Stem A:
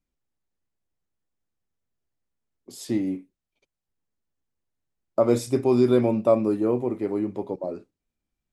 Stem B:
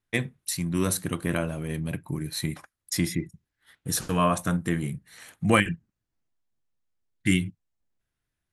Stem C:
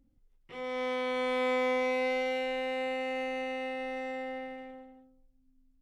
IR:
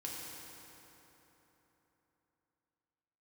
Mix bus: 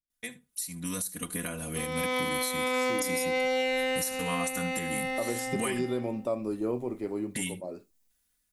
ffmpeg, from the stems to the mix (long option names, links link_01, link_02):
-filter_complex "[0:a]volume=-18.5dB,asplit=2[link_01][link_02];[link_02]volume=-22.5dB[link_03];[1:a]highshelf=frequency=5100:gain=9,aecho=1:1:4.1:1,acompressor=threshold=-32dB:ratio=2,adelay=100,volume=-12.5dB,asplit=2[link_04][link_05];[link_05]volume=-20dB[link_06];[2:a]adelay=1250,volume=-5.5dB,asplit=2[link_07][link_08];[link_08]volume=-11.5dB[link_09];[link_03][link_06][link_09]amix=inputs=3:normalize=0,aecho=0:1:74:1[link_10];[link_01][link_04][link_07][link_10]amix=inputs=4:normalize=0,highshelf=frequency=3600:gain=10,dynaudnorm=framelen=320:gausssize=5:maxgain=11.5dB,alimiter=limit=-20.5dB:level=0:latency=1:release=317"